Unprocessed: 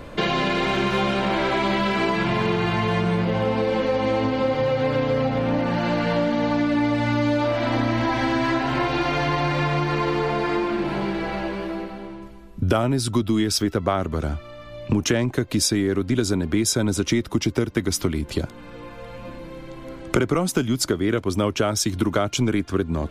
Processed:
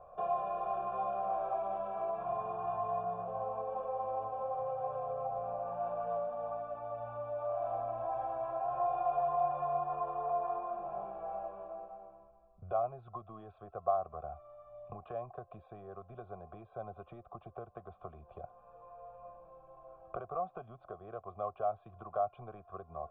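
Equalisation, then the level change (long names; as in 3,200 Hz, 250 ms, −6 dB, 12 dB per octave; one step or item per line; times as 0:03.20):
formant resonators in series a
phaser with its sweep stopped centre 1,400 Hz, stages 8
+3.0 dB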